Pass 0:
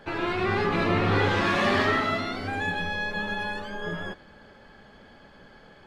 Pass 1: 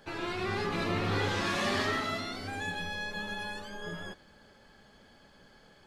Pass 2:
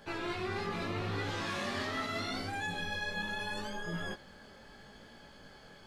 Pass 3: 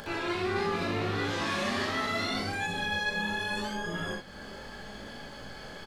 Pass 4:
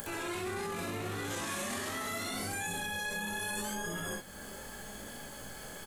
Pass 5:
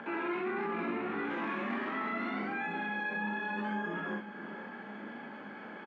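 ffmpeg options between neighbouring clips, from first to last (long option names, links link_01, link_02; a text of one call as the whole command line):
ffmpeg -i in.wav -af "bass=frequency=250:gain=1,treble=frequency=4000:gain=12,volume=-8dB" out.wav
ffmpeg -i in.wav -af "areverse,acompressor=threshold=-38dB:ratio=6,areverse,flanger=delay=17.5:depth=5.3:speed=0.77,volume=7dB" out.wav
ffmpeg -i in.wav -filter_complex "[0:a]acompressor=mode=upward:threshold=-41dB:ratio=2.5,asplit=2[link_01][link_02];[link_02]aecho=0:1:38|63:0.531|0.562[link_03];[link_01][link_03]amix=inputs=2:normalize=0,volume=3.5dB" out.wav
ffmpeg -i in.wav -af "alimiter=level_in=2.5dB:limit=-24dB:level=0:latency=1:release=17,volume=-2.5dB,aexciter=amount=8.1:drive=4.9:freq=6800,volume=-3dB" out.wav
ffmpeg -i in.wav -af "highpass=frequency=190:width=0.5412,highpass=frequency=190:width=1.3066,equalizer=frequency=220:width_type=q:width=4:gain=8,equalizer=frequency=320:width_type=q:width=4:gain=6,equalizer=frequency=560:width_type=q:width=4:gain=-3,equalizer=frequency=920:width_type=q:width=4:gain=5,equalizer=frequency=1400:width_type=q:width=4:gain=4,equalizer=frequency=2300:width_type=q:width=4:gain=4,lowpass=frequency=2500:width=0.5412,lowpass=frequency=2500:width=1.3066,aecho=1:1:506:0.237" out.wav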